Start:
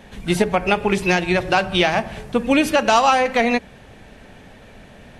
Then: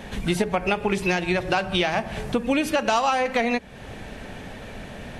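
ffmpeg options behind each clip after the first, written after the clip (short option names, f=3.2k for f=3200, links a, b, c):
-af "acompressor=threshold=-31dB:ratio=2.5,volume=6dB"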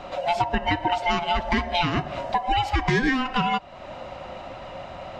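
-af "afftfilt=real='real(if(lt(b,1008),b+24*(1-2*mod(floor(b/24),2)),b),0)':imag='imag(if(lt(b,1008),b+24*(1-2*mod(floor(b/24),2)),b),0)':win_size=2048:overlap=0.75,adynamicsmooth=sensitivity=0.5:basefreq=5.9k,equalizer=f=10k:t=o:w=0.28:g=-13.5"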